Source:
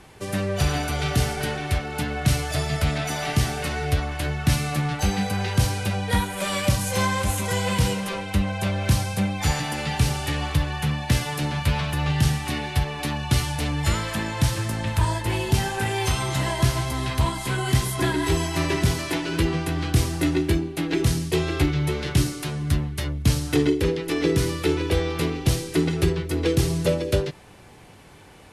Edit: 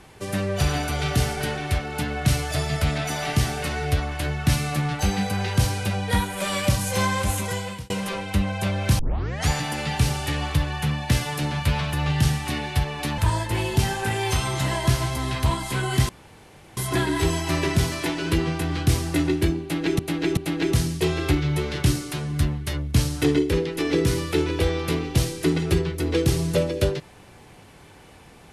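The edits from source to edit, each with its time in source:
7.37–7.9 fade out
8.99 tape start 0.49 s
13.18–14.93 cut
17.84 insert room tone 0.68 s
20.68–21.06 loop, 3 plays

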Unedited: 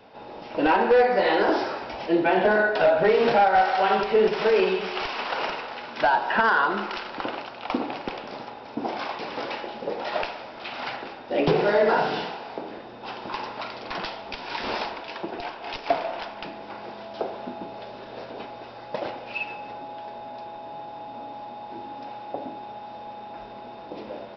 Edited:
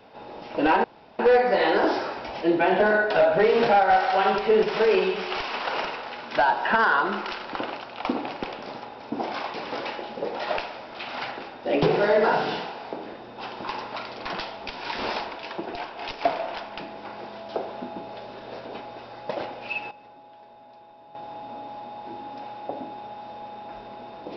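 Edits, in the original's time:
0.84 insert room tone 0.35 s
19.56–20.8 gain -11.5 dB

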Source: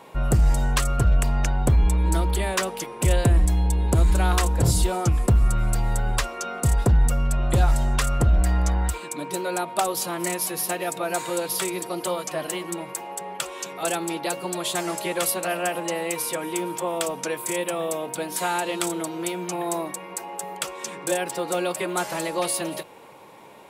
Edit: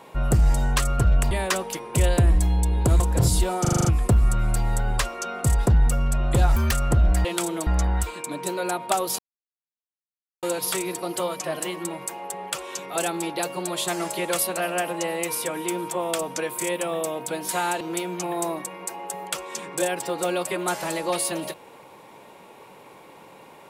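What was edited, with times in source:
1.31–2.38 cut
4.07–4.43 cut
5.04 stutter 0.04 s, 7 plays
7.75–8.01 speed 166%
10.06–11.3 mute
18.68–19.1 move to 8.54

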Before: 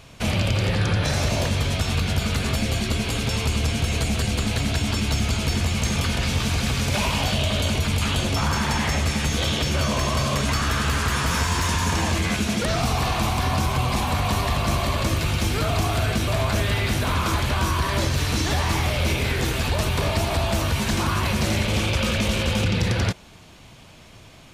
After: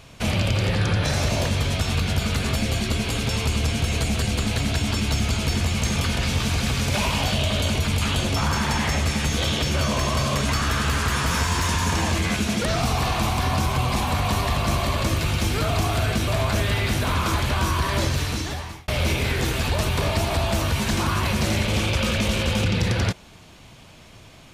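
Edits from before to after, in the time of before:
18.09–18.88 fade out

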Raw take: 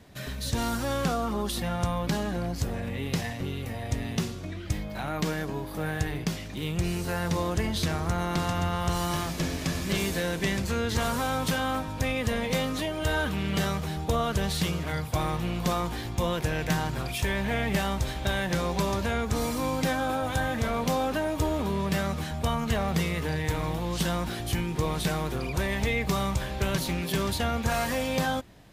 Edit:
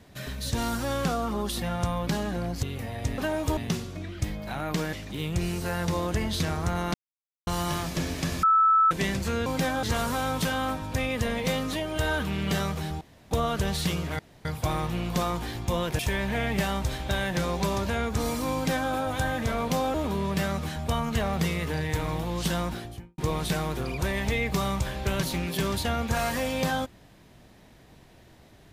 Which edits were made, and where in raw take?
2.63–3.5 cut
5.41–6.36 cut
8.37–8.9 mute
9.86–10.34 bleep 1310 Hz -16.5 dBFS
14.07 insert room tone 0.30 s
14.95 insert room tone 0.26 s
16.49–17.15 cut
19.7–20.07 copy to 10.89
21.1–21.49 move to 4.05
24.16–24.73 studio fade out

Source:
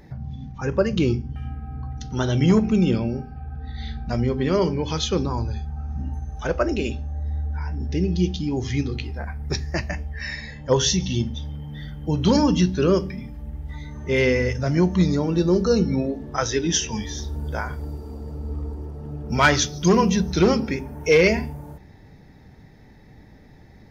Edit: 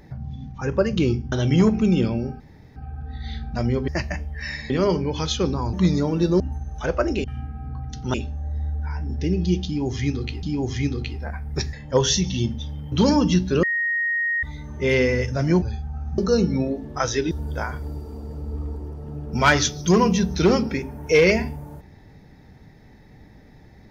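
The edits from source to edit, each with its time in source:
1.32–2.22 move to 6.85
3.3 insert room tone 0.36 s
5.45–6.01 swap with 14.89–15.56
8.37–9.14 loop, 2 plays
9.67–10.49 move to 4.42
11.68–12.19 cut
12.9–13.7 bleep 1870 Hz -20 dBFS
16.69–17.28 cut

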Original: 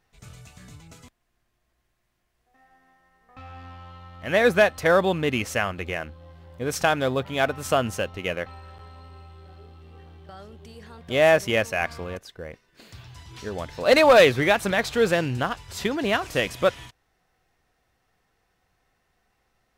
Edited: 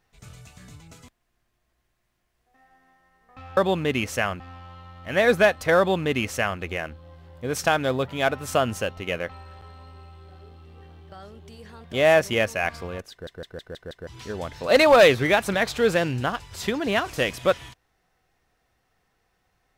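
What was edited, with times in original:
4.95–5.78 copy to 3.57
12.28 stutter in place 0.16 s, 6 plays

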